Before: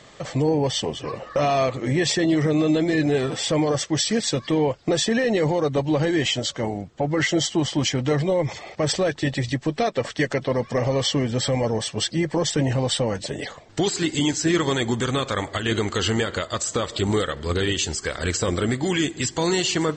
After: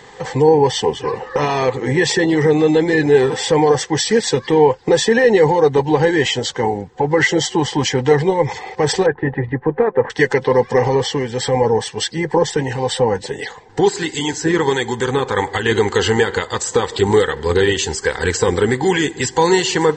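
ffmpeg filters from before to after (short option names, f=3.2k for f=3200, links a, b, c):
-filter_complex "[0:a]asettb=1/sr,asplit=3[a][b][c];[a]atrim=end=9.064[d];[b]atrim=start=9.06:end=10.1,asetpts=PTS-STARTPTS,afade=t=in:d=0.004:c=qsin,afade=t=out:st=1.036:d=0.004:c=qsin,lowpass=f=1.7k:w=0.5412,lowpass=f=1.7k:w=1.3066[e];[c]atrim=start=10.096[f];[d][e]acrossfade=d=0.004:c1=hsin:c2=qsin[g];[g][f]acrossfade=d=0.004:c1=qsin:c2=hsin,asettb=1/sr,asplit=3[h][i][j];[h]atrim=end=10.954[k];[i]atrim=start=10.95:end=15.35,asetpts=PTS-STARTPTS,afade=t=in:d=0.004:c=qsin,afade=t=out:st=4.396:d=0.004:c=qsin,acrossover=split=1600[l][m];[l]aeval=exprs='val(0)*(1-0.5/2+0.5/2*cos(2*PI*1.4*n/s))':c=same[n];[m]aeval=exprs='val(0)*(1-0.5/2-0.5/2*cos(2*PI*1.4*n/s))':c=same[o];[n][o]amix=inputs=2:normalize=0[p];[j]atrim=start=15.346[q];[k][p]acrossfade=d=0.004:c1=hsin:c2=qsin[r];[r][q]acrossfade=d=0.004:c1=qsin:c2=hsin,superequalizer=7b=2.51:8b=0.447:9b=3.16:11b=2,volume=3.5dB"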